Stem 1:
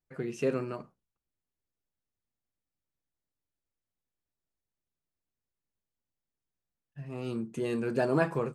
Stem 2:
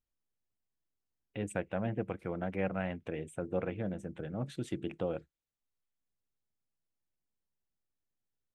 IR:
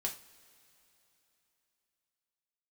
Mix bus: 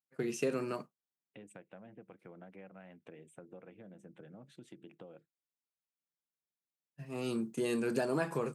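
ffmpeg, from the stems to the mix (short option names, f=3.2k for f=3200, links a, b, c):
-filter_complex "[0:a]agate=range=-33dB:threshold=-37dB:ratio=3:detection=peak,highshelf=f=4.8k:g=12,acompressor=threshold=-29dB:ratio=6,volume=0.5dB[a];[1:a]acompressor=threshold=-39dB:ratio=10,volume=-8.5dB[b];[a][b]amix=inputs=2:normalize=0,highpass=f=140:w=0.5412,highpass=f=140:w=1.3066"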